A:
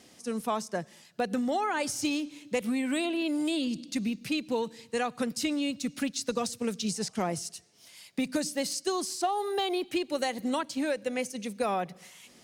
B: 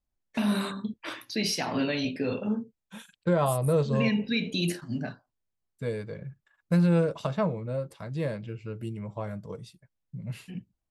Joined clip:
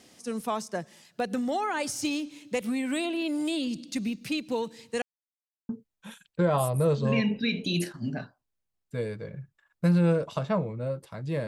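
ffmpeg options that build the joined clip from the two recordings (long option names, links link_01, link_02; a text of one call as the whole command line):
ffmpeg -i cue0.wav -i cue1.wav -filter_complex "[0:a]apad=whole_dur=11.47,atrim=end=11.47,asplit=2[link_01][link_02];[link_01]atrim=end=5.02,asetpts=PTS-STARTPTS,afade=type=out:start_time=5.016:duration=0.004:curve=hsin[link_03];[link_02]atrim=start=5.02:end=5.69,asetpts=PTS-STARTPTS,volume=0[link_04];[1:a]atrim=start=2.57:end=8.35,asetpts=PTS-STARTPTS,afade=type=in:duration=0.004:curve=hsin[link_05];[link_03][link_04][link_05]concat=n=3:v=0:a=1" out.wav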